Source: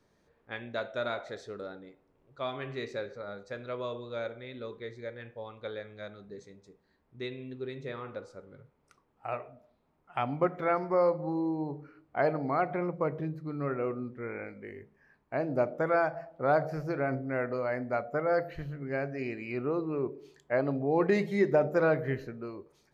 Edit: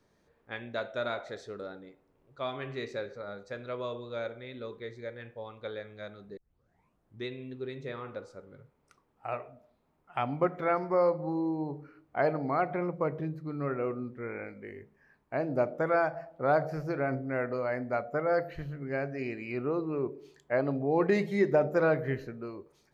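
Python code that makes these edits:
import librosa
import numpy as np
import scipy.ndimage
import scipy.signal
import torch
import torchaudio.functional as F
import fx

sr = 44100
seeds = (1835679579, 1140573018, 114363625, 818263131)

y = fx.edit(x, sr, fx.tape_start(start_s=6.37, length_s=0.88), tone=tone)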